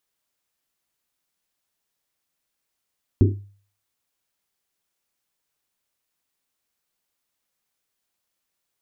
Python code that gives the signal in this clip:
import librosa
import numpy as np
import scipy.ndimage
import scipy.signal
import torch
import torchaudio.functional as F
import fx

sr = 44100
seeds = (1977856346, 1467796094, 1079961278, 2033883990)

y = fx.risset_drum(sr, seeds[0], length_s=1.1, hz=100.0, decay_s=0.46, noise_hz=320.0, noise_width_hz=130.0, noise_pct=40)